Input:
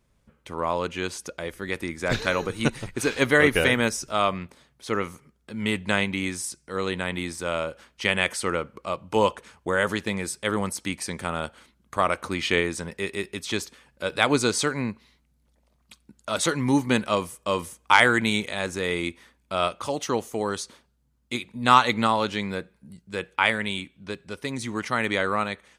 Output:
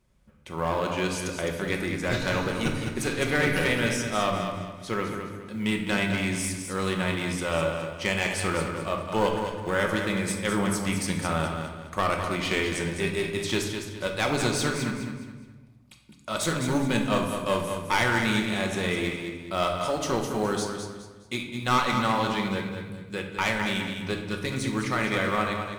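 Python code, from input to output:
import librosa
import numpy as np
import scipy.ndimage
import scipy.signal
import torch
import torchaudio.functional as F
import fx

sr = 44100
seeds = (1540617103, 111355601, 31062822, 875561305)

p1 = fx.peak_eq(x, sr, hz=69.0, db=5.0, octaves=1.1)
p2 = fx.rider(p1, sr, range_db=10, speed_s=0.5)
p3 = p1 + (p2 * librosa.db_to_amplitude(-1.5))
p4 = fx.quant_float(p3, sr, bits=4)
p5 = fx.clip_asym(p4, sr, top_db=-19.5, bottom_db=-4.5)
p6 = p5 + fx.echo_feedback(p5, sr, ms=208, feedback_pct=33, wet_db=-7.5, dry=0)
p7 = fx.room_shoebox(p6, sr, seeds[0], volume_m3=560.0, walls='mixed', distance_m=1.0)
y = p7 * librosa.db_to_amplitude(-8.5)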